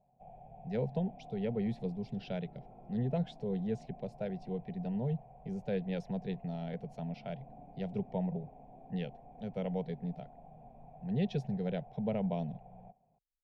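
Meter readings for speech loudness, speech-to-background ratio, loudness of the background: −38.0 LKFS, 17.0 dB, −55.0 LKFS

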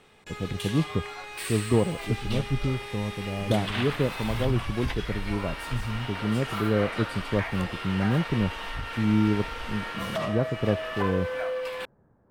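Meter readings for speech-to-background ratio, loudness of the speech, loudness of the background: 5.0 dB, −29.0 LKFS, −34.0 LKFS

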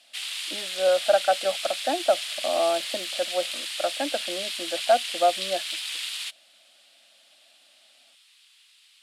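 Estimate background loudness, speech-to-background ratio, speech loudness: −30.0 LKFS, 3.5 dB, −26.5 LKFS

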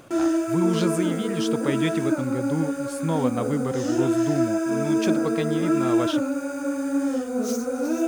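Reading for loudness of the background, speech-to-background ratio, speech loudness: −25.0 LKFS, −3.5 dB, −28.5 LKFS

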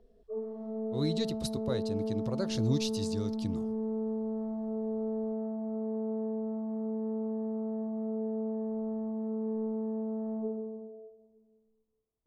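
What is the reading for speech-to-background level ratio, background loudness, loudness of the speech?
−0.5 dB, −35.0 LKFS, −35.5 LKFS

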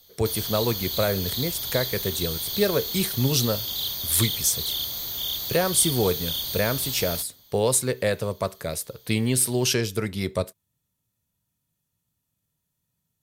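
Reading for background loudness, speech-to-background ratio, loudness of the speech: −27.5 LKFS, 2.0 dB, −25.5 LKFS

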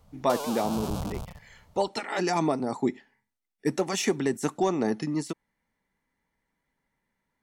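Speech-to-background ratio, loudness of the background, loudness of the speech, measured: 6.5 dB, −35.5 LKFS, −29.0 LKFS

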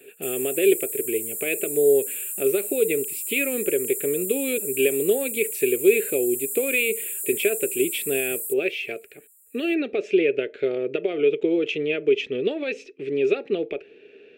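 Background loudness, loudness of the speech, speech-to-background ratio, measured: −28.0 LKFS, −24.5 LKFS, 3.5 dB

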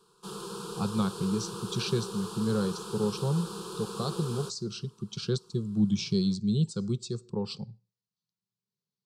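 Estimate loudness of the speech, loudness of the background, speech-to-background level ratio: −31.5 LKFS, −39.0 LKFS, 7.5 dB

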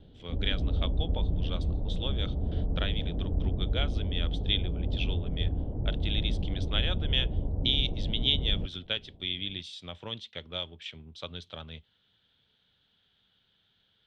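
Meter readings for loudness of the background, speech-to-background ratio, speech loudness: −33.0 LKFS, −1.0 dB, −34.0 LKFS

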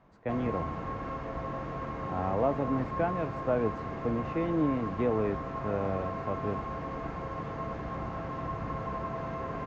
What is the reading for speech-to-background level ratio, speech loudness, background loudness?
4.5 dB, −32.5 LKFS, −37.0 LKFS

